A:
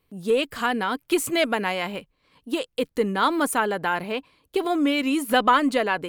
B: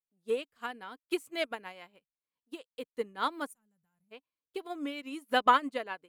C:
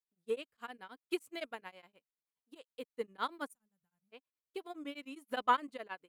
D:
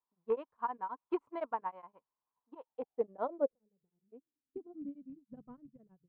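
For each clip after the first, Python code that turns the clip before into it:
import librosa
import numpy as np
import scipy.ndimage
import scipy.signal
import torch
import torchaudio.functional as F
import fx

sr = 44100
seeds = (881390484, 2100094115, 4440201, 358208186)

y1 = fx.spec_box(x, sr, start_s=3.52, length_s=0.6, low_hz=220.0, high_hz=5700.0, gain_db=-23)
y1 = fx.low_shelf(y1, sr, hz=160.0, db=-8.0)
y1 = fx.upward_expand(y1, sr, threshold_db=-37.0, expansion=2.5)
y1 = F.gain(torch.from_numpy(y1), -2.5).numpy()
y2 = y1 * np.abs(np.cos(np.pi * 9.6 * np.arange(len(y1)) / sr))
y2 = F.gain(torch.from_numpy(y2), -3.5).numpy()
y3 = fx.rattle_buzz(y2, sr, strikes_db=-50.0, level_db=-33.0)
y3 = fx.filter_sweep_lowpass(y3, sr, from_hz=1000.0, to_hz=140.0, start_s=2.5, end_s=5.48, q=7.7)
y3 = F.gain(torch.from_numpy(y3), 1.0).numpy()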